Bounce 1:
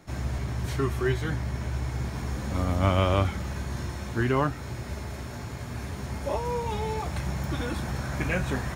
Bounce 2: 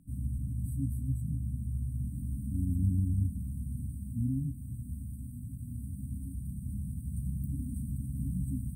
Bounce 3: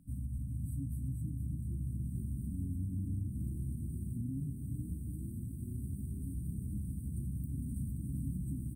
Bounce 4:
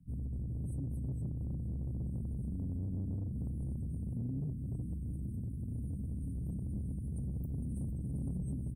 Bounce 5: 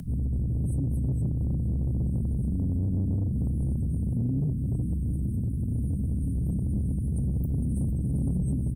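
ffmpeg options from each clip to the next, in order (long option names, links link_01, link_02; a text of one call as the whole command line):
ffmpeg -i in.wav -af "afftfilt=real='re*(1-between(b*sr/4096,290,7900))':imag='im*(1-between(b*sr/4096,290,7900))':win_size=4096:overlap=0.75,volume=-3.5dB" out.wav
ffmpeg -i in.wav -filter_complex "[0:a]alimiter=level_in=6dB:limit=-24dB:level=0:latency=1:release=161,volume=-6dB,asplit=2[link_01][link_02];[link_02]asplit=6[link_03][link_04][link_05][link_06][link_07][link_08];[link_03]adelay=457,afreqshift=32,volume=-8dB[link_09];[link_04]adelay=914,afreqshift=64,volume=-13.5dB[link_10];[link_05]adelay=1371,afreqshift=96,volume=-19dB[link_11];[link_06]adelay=1828,afreqshift=128,volume=-24.5dB[link_12];[link_07]adelay=2285,afreqshift=160,volume=-30.1dB[link_13];[link_08]adelay=2742,afreqshift=192,volume=-35.6dB[link_14];[link_09][link_10][link_11][link_12][link_13][link_14]amix=inputs=6:normalize=0[link_15];[link_01][link_15]amix=inputs=2:normalize=0,volume=-1dB" out.wav
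ffmpeg -i in.wav -filter_complex "[0:a]afftdn=noise_reduction=18:noise_floor=-54,aecho=1:1:1.3:0.78,acrossover=split=200|2900[link_01][link_02][link_03];[link_01]asoftclip=type=tanh:threshold=-37dB[link_04];[link_04][link_02][link_03]amix=inputs=3:normalize=0,volume=1dB" out.wav
ffmpeg -i in.wav -filter_complex "[0:a]equalizer=frequency=2600:width_type=o:width=1.2:gain=-6.5,asplit=2[link_01][link_02];[link_02]alimiter=level_in=17dB:limit=-24dB:level=0:latency=1,volume=-17dB,volume=-3dB[link_03];[link_01][link_03]amix=inputs=2:normalize=0,acompressor=mode=upward:threshold=-39dB:ratio=2.5,volume=8.5dB" out.wav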